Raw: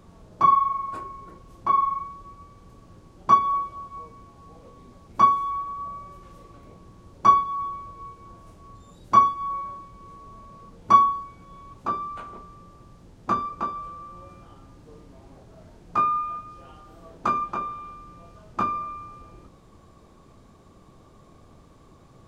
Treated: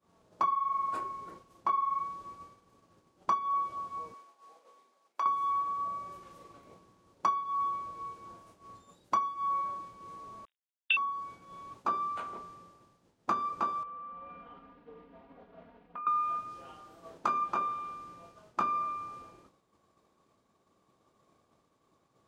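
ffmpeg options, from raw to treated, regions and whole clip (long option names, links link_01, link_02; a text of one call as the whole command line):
ffmpeg -i in.wav -filter_complex "[0:a]asettb=1/sr,asplit=3[link_01][link_02][link_03];[link_01]atrim=end=4.144[link_04];[link_02]atrim=start=4.14:end=5.26,asetpts=PTS-STARTPTS,afade=type=in:duration=0.004:curve=qsin,afade=type=out:start_time=1.116:duration=0.004:curve=qsin,highpass=540,acompressor=threshold=-31dB:ratio=4:attack=3.2:release=140:knee=1:detection=peak[link_05];[link_03]atrim=start=5.256[link_06];[link_04][link_05]acrossfade=duration=0.004:curve1=hsin:curve2=qsin[link_07];[link_07][link_06]acrossfade=duration=0.004:curve1=qsin:curve2=hsin,asettb=1/sr,asplit=3[link_08][link_09][link_10];[link_08]atrim=end=10.454[link_11];[link_09]atrim=start=10.45:end=10.97,asetpts=PTS-STARTPTS,afade=type=in:duration=0.004:curve=qsin,afade=type=out:start_time=0.516:duration=0.004:curve=qsin,agate=range=-33dB:threshold=-37dB:ratio=3:release=100:detection=peak,acrusher=bits=7:mix=0:aa=0.5,lowpass=frequency=3200:width_type=q:width=0.5098,lowpass=frequency=3200:width_type=q:width=0.6013,lowpass=frequency=3200:width_type=q:width=0.9,lowpass=frequency=3200:width_type=q:width=2.563,afreqshift=-3800[link_12];[link_10]atrim=start=10.966[link_13];[link_11][link_12]acrossfade=duration=0.004:curve1=hsin:curve2=qsin[link_14];[link_14][link_13]acrossfade=duration=0.004:curve1=qsin:curve2=hsin,asettb=1/sr,asplit=3[link_15][link_16][link_17];[link_15]atrim=end=13.834[link_18];[link_16]atrim=start=13.83:end=16.07,asetpts=PTS-STARTPTS,afade=type=in:duration=0.004:curve=qsin,afade=type=out:start_time=2.236:duration=0.004:curve=qsin,aecho=1:1:4.2:1,atrim=end_sample=98784,acompressor=threshold=-41dB:ratio=6:attack=3.2:release=140:knee=1:detection=peak,lowpass=frequency=2900:width=0.5412,lowpass=frequency=2900:width=1.3066[link_19];[link_17]atrim=start=16.066[link_20];[link_18][link_19]acrossfade=duration=0.004:curve1=hsin:curve2=qsin[link_21];[link_21][link_20]acrossfade=duration=0.004:curve1=qsin:curve2=hsin,highpass=frequency=380:poles=1,acompressor=threshold=-26dB:ratio=12,agate=range=-33dB:threshold=-47dB:ratio=3:detection=peak" out.wav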